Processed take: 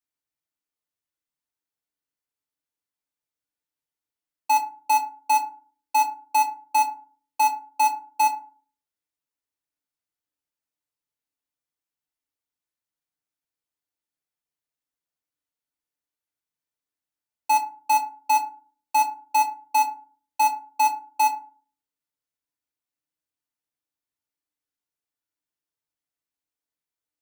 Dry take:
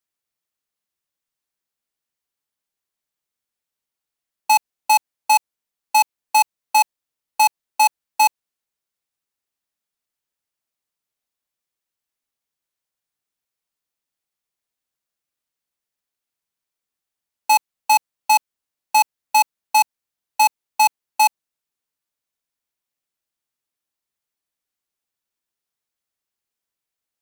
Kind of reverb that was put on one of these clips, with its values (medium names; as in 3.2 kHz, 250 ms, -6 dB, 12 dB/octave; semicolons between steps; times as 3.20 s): FDN reverb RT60 0.41 s, low-frequency decay 1.4×, high-frequency decay 0.45×, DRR 1 dB; trim -8.5 dB